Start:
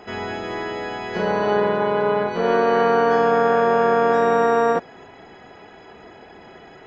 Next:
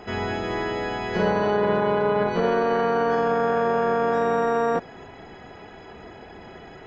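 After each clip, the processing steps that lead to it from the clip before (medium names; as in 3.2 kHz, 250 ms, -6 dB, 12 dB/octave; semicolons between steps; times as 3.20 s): bass shelf 130 Hz +9.5 dB; peak limiter -12 dBFS, peak gain reduction 7 dB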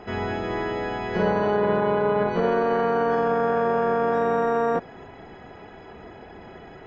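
treble shelf 3.9 kHz -9.5 dB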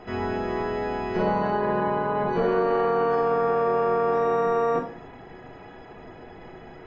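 simulated room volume 58 m³, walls mixed, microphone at 0.52 m; trim -3 dB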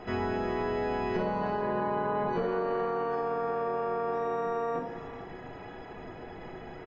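compression, threshold -27 dBFS, peak gain reduction 8.5 dB; delay 445 ms -15.5 dB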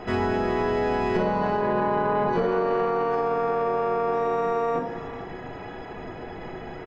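tracing distortion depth 0.035 ms; trim +6.5 dB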